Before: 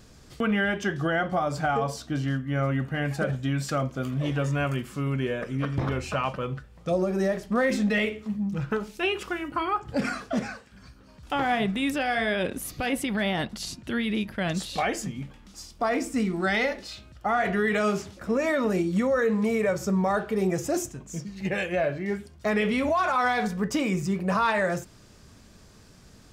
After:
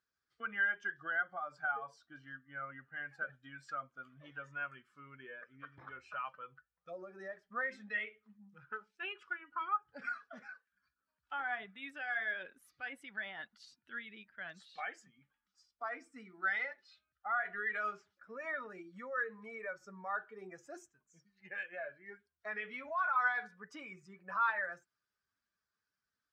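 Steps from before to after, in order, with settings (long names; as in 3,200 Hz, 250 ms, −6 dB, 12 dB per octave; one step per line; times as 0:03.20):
spectral dynamics exaggerated over time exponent 1.5
resonant band-pass 1,500 Hz, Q 3
level −1 dB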